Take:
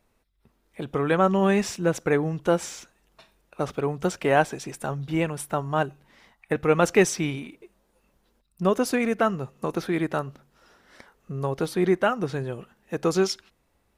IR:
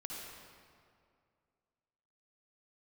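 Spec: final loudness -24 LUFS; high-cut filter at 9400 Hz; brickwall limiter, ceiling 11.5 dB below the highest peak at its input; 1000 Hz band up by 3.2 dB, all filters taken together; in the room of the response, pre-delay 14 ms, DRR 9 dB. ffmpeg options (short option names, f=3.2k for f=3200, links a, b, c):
-filter_complex "[0:a]lowpass=9.4k,equalizer=f=1k:t=o:g=4.5,alimiter=limit=-14.5dB:level=0:latency=1,asplit=2[a][b];[1:a]atrim=start_sample=2205,adelay=14[c];[b][c]afir=irnorm=-1:irlink=0,volume=-8dB[d];[a][d]amix=inputs=2:normalize=0,volume=3dB"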